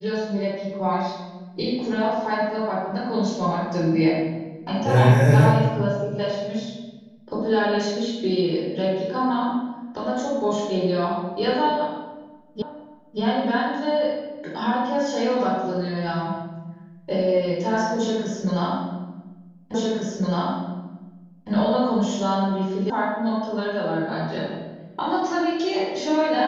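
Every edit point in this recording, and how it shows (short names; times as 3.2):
12.62 repeat of the last 0.58 s
19.74 repeat of the last 1.76 s
22.9 sound cut off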